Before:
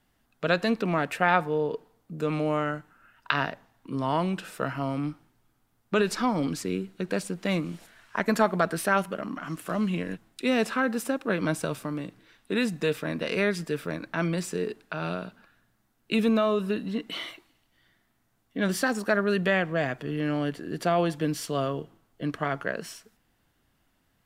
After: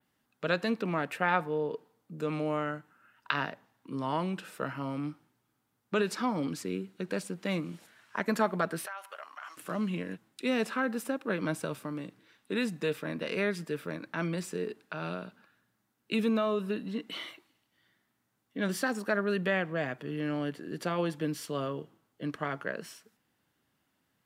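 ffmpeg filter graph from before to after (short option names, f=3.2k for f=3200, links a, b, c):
-filter_complex "[0:a]asettb=1/sr,asplit=3[a][b][c];[a]atrim=end=8.864[d];[b]atrim=start=8.86:end=9.57,asetpts=PTS-STARTPTS,afade=t=in:d=0.004:c=qsin,afade=t=out:st=0.706:d=0.004:c=qsin,highpass=f=720:w=0.5412,highpass=f=720:w=1.3066,acompressor=threshold=-32dB:ratio=6:attack=3.2:release=140:knee=1:detection=peak[e];[c]atrim=start=9.566[f];[d][e]acrossfade=d=0.004:c1=hsin:c2=qsin[g];[g][f]acrossfade=d=0.004:c1=qsin:c2=hsin,highpass=120,bandreject=f=690:w=14,adynamicequalizer=threshold=0.00355:dfrequency=6300:dqfactor=0.89:tfrequency=6300:tqfactor=0.89:attack=5:release=100:ratio=0.375:range=2:mode=cutabove:tftype=bell,volume=-4.5dB"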